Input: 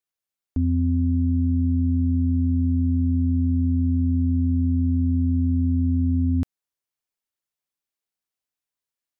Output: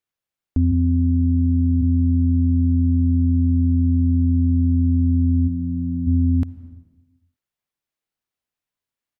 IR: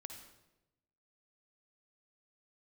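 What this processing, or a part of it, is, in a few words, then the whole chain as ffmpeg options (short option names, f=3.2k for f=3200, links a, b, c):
compressed reverb return: -filter_complex "[0:a]asplit=3[a][b][c];[a]afade=t=out:st=5.47:d=0.02[d];[b]asplit=2[e][f];[f]adelay=41,volume=-2.5dB[g];[e][g]amix=inputs=2:normalize=0,afade=t=in:st=5.47:d=0.02,afade=t=out:st=6.06:d=0.02[h];[c]afade=t=in:st=6.06:d=0.02[i];[d][h][i]amix=inputs=3:normalize=0,asplit=2[j][k];[1:a]atrim=start_sample=2205[l];[k][l]afir=irnorm=-1:irlink=0,acompressor=threshold=-31dB:ratio=6,volume=-0.5dB[m];[j][m]amix=inputs=2:normalize=0,bass=f=250:g=3,treble=f=4k:g=-6,asplit=3[n][o][p];[n]afade=t=out:st=0.71:d=0.02[q];[o]highpass=f=66:w=0.5412,highpass=f=66:w=1.3066,afade=t=in:st=0.71:d=0.02,afade=t=out:st=1.81:d=0.02[r];[p]afade=t=in:st=1.81:d=0.02[s];[q][r][s]amix=inputs=3:normalize=0"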